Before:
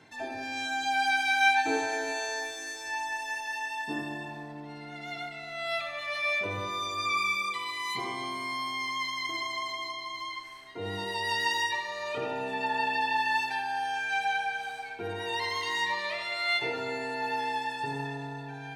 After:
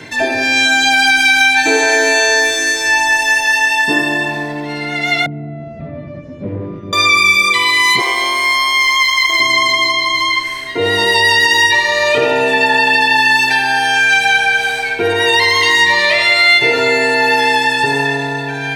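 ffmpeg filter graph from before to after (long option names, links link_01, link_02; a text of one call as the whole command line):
ffmpeg -i in.wav -filter_complex "[0:a]asettb=1/sr,asplit=3[link_01][link_02][link_03];[link_01]atrim=end=5.264[link_04];[link_02]atrim=start=5.26:end=6.93,asetpts=PTS-STARTPTS,afade=type=in:duration=0.004:curve=qsin,afade=type=out:start_time=1.666:duration=0.004:curve=qsin,aeval=exprs='0.1*sin(PI/2*3.98*val(0)/0.1)':channel_layout=same,asuperpass=centerf=160:order=4:qfactor=1.1[link_05];[link_03]atrim=start=6.926[link_06];[link_04][link_05]acrossfade=duration=0.004:curve1=hsin:curve2=qsin[link_07];[link_07][link_06]acrossfade=duration=0.004:curve1=qsin:curve2=hsin,asettb=1/sr,asplit=3[link_08][link_09][link_10];[link_08]atrim=end=8.014[link_11];[link_09]atrim=start=8.01:end=9.4,asetpts=PTS-STARTPTS,afade=type=in:duration=0.004:curve=qsin,afade=type=out:start_time=1.386:duration=0.004:curve=qsin,highpass=frequency=440:width=0.5412,highpass=frequency=440:width=1.3066,tremolo=f=140:d=0.261,aeval=exprs='sgn(val(0))*max(abs(val(0))-0.00188,0)':channel_layout=same[link_12];[link_10]atrim=start=9.396[link_13];[link_11][link_12]acrossfade=duration=0.004:curve1=hsin:curve2=qsin[link_14];[link_14][link_13]acrossfade=duration=0.004:curve1=qsin:curve2=hsin,equalizer=frequency=200:width_type=o:width=0.33:gain=-4,equalizer=frequency=800:width_type=o:width=0.33:gain=-9,equalizer=frequency=1250:width_type=o:width=0.33:gain=-7,equalizer=frequency=2000:width_type=o:width=0.33:gain=3,acrossover=split=370|4500[link_15][link_16][link_17];[link_15]acompressor=threshold=-51dB:ratio=4[link_18];[link_16]acompressor=threshold=-33dB:ratio=4[link_19];[link_17]acompressor=threshold=-45dB:ratio=4[link_20];[link_18][link_19][link_20]amix=inputs=3:normalize=0,alimiter=level_in=25dB:limit=-1dB:release=50:level=0:latency=1,volume=-1dB" out.wav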